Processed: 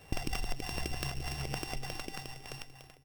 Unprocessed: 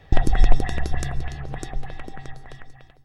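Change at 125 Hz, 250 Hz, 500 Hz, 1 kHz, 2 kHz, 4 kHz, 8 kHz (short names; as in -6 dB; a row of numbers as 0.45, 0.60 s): -13.0 dB, -10.0 dB, -9.5 dB, -9.5 dB, -6.5 dB, 0.0 dB, n/a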